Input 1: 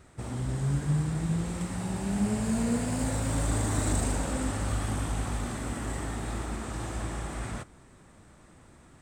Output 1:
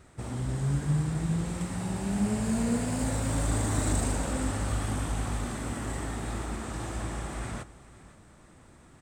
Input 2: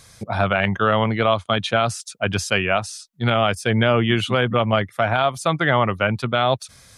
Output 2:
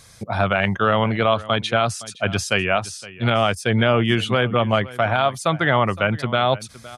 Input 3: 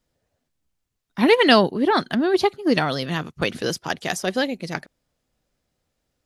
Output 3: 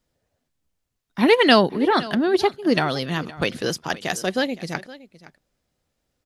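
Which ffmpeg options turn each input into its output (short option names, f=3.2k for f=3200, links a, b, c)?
-af "aecho=1:1:515:0.119"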